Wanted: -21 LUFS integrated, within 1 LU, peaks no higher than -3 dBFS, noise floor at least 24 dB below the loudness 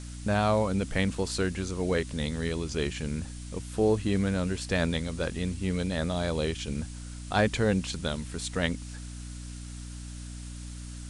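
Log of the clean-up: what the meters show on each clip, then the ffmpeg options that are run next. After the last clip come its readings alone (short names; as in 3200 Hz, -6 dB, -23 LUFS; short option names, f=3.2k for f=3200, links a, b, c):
hum 60 Hz; harmonics up to 300 Hz; hum level -38 dBFS; noise floor -40 dBFS; noise floor target -54 dBFS; loudness -29.5 LUFS; peak -12.0 dBFS; loudness target -21.0 LUFS
-> -af "bandreject=f=60:t=h:w=6,bandreject=f=120:t=h:w=6,bandreject=f=180:t=h:w=6,bandreject=f=240:t=h:w=6,bandreject=f=300:t=h:w=6"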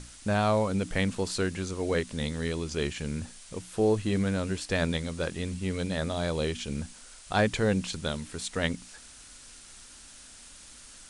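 hum none; noise floor -50 dBFS; noise floor target -54 dBFS
-> -af "afftdn=nr=6:nf=-50"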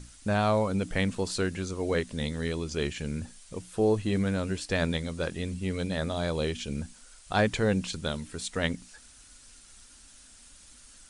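noise floor -54 dBFS; loudness -30.0 LUFS; peak -12.5 dBFS; loudness target -21.0 LUFS
-> -af "volume=9dB"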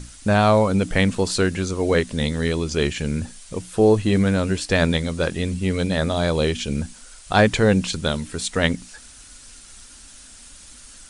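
loudness -21.0 LUFS; peak -3.5 dBFS; noise floor -45 dBFS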